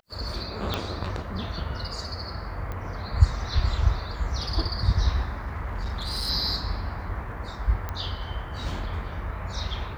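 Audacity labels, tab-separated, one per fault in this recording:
0.740000	0.740000	pop -12 dBFS
2.720000	2.720000	pop -22 dBFS
5.470000	6.300000	clipped -26 dBFS
7.890000	7.890000	pop -17 dBFS

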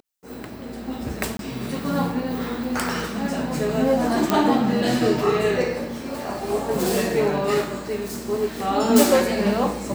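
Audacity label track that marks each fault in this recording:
1.370000	1.390000	gap 22 ms
4.300000	4.300000	pop -5 dBFS

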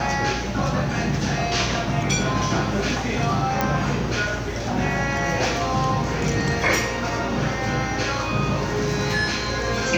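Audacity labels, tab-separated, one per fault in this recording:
3.610000	3.610000	pop -7 dBFS

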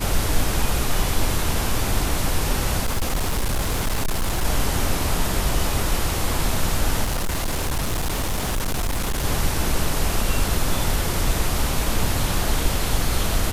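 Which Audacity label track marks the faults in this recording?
2.810000	4.450000	clipped -18 dBFS
7.030000	9.250000	clipped -19.5 dBFS

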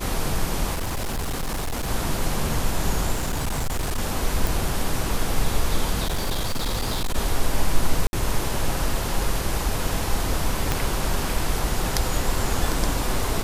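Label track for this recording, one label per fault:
0.730000	1.890000	clipped -23 dBFS
3.130000	3.990000	clipped -21 dBFS
4.470000	4.470000	pop
6.050000	7.160000	clipped -20 dBFS
8.070000	8.130000	gap 61 ms
10.720000	10.720000	pop

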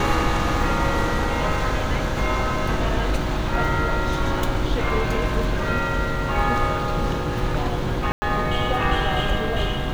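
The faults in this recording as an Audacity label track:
8.120000	8.220000	gap 0.1 s

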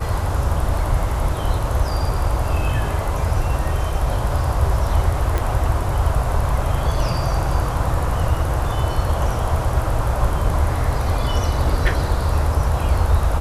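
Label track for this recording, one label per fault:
5.380000	5.380000	pop

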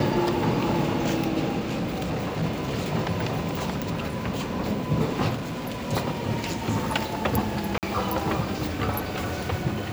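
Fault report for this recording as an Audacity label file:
1.590000	2.440000	clipped -24 dBFS
5.340000	5.890000	clipped -27.5 dBFS
7.780000	7.830000	gap 48 ms

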